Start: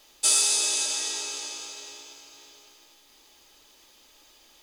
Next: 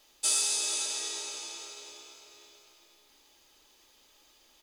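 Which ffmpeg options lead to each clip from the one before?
ffmpeg -i in.wav -filter_complex "[0:a]asplit=2[link_01][link_02];[link_02]adelay=437.3,volume=-7dB,highshelf=frequency=4000:gain=-9.84[link_03];[link_01][link_03]amix=inputs=2:normalize=0,volume=-6dB" out.wav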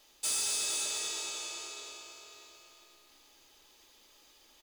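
ffmpeg -i in.wav -af "asoftclip=type=tanh:threshold=-28dB,aecho=1:1:224|448|672|896|1120|1344:0.376|0.203|0.11|0.0592|0.032|0.0173" out.wav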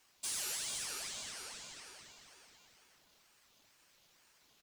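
ffmpeg -i in.wav -af "aeval=exprs='val(0)*sin(2*PI*1200*n/s+1200*0.85/2.1*sin(2*PI*2.1*n/s))':channel_layout=same,volume=-4dB" out.wav

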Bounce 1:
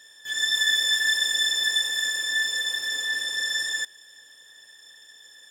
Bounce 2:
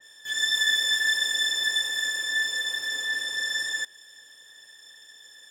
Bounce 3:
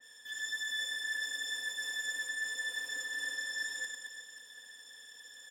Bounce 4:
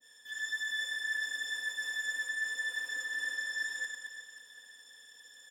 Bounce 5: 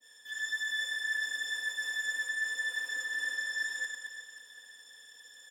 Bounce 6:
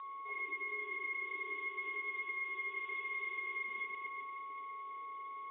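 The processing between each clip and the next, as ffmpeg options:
ffmpeg -i in.wav -af "adynamicequalizer=threshold=0.0224:dfrequency=2500:dqfactor=0.7:tfrequency=2500:tqfactor=0.7:attack=5:release=100:ratio=0.375:range=1.5:mode=cutabove:tftype=highshelf" out.wav
ffmpeg -i in.wav -af "aecho=1:1:4.1:0.72,areverse,acompressor=threshold=-31dB:ratio=6,areverse,aecho=1:1:100|220|364|536.8|744.2:0.631|0.398|0.251|0.158|0.1,volume=-6.5dB" out.wav
ffmpeg -i in.wav -af "adynamicequalizer=threshold=0.00355:dfrequency=1500:dqfactor=1:tfrequency=1500:tqfactor=1:attack=5:release=100:ratio=0.375:range=3:mode=boostabove:tftype=bell,volume=-3dB" out.wav
ffmpeg -i in.wav -af "highpass=220,volume=1.5dB" out.wav
ffmpeg -i in.wav -af "aeval=exprs='val(0)+0.00891*sin(2*PI*2800*n/s)':channel_layout=same,acompressor=threshold=-35dB:ratio=6,lowpass=frequency=3300:width_type=q:width=0.5098,lowpass=frequency=3300:width_type=q:width=0.6013,lowpass=frequency=3300:width_type=q:width=0.9,lowpass=frequency=3300:width_type=q:width=2.563,afreqshift=-3900,volume=-2dB" out.wav

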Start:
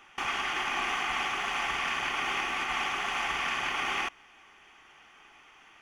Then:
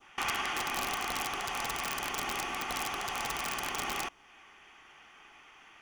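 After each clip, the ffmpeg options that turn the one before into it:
ffmpeg -i in.wav -af "aeval=exprs='(mod(11.9*val(0)+1,2)-1)/11.9':channel_layout=same,adynamicequalizer=threshold=0.00501:dfrequency=2000:dqfactor=0.75:tfrequency=2000:tqfactor=0.75:attack=5:release=100:ratio=0.375:range=3.5:mode=cutabove:tftype=bell" out.wav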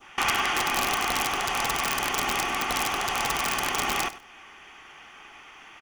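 ffmpeg -i in.wav -af "aecho=1:1:98|196:0.168|0.0269,volume=8dB" out.wav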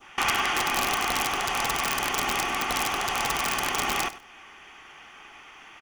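ffmpeg -i in.wav -af anull out.wav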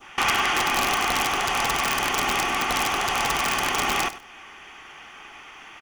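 ffmpeg -i in.wav -af "asoftclip=type=tanh:threshold=-16.5dB,volume=4dB" out.wav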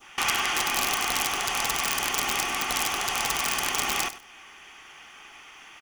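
ffmpeg -i in.wav -af "highshelf=frequency=3500:gain=10,volume=-6.5dB" out.wav

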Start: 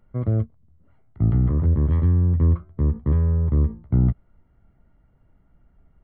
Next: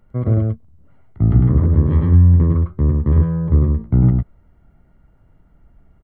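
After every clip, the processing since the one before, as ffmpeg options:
ffmpeg -i in.wav -af "aecho=1:1:103:0.708,volume=4.5dB" out.wav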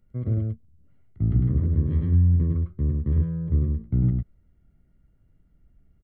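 ffmpeg -i in.wav -af "equalizer=frequency=920:width=0.93:gain=-13,volume=-8dB" out.wav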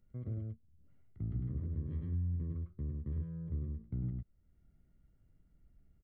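ffmpeg -i in.wav -af "acompressor=threshold=-45dB:ratio=1.5,volume=-6.5dB" out.wav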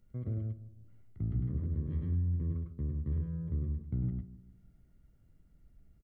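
ffmpeg -i in.wav -filter_complex "[0:a]asplit=2[link_01][link_02];[link_02]adelay=156,lowpass=frequency=1000:poles=1,volume=-14dB,asplit=2[link_03][link_04];[link_04]adelay=156,lowpass=frequency=1000:poles=1,volume=0.42,asplit=2[link_05][link_06];[link_06]adelay=156,lowpass=frequency=1000:poles=1,volume=0.42,asplit=2[link_07][link_08];[link_08]adelay=156,lowpass=frequency=1000:poles=1,volume=0.42[link_09];[link_01][link_03][link_05][link_07][link_09]amix=inputs=5:normalize=0,volume=4dB" out.wav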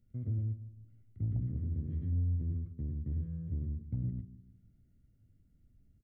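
ffmpeg -i in.wav -af "equalizer=frequency=100:width_type=o:width=0.67:gain=11,equalizer=frequency=250:width_type=o:width=0.67:gain=7,equalizer=frequency=1000:width_type=o:width=0.67:gain=-11,aeval=exprs='0.178*(cos(1*acos(clip(val(0)/0.178,-1,1)))-cos(1*PI/2))+0.00794*(cos(5*acos(clip(val(0)/0.178,-1,1)))-cos(5*PI/2))':channel_layout=same,volume=-8.5dB" out.wav

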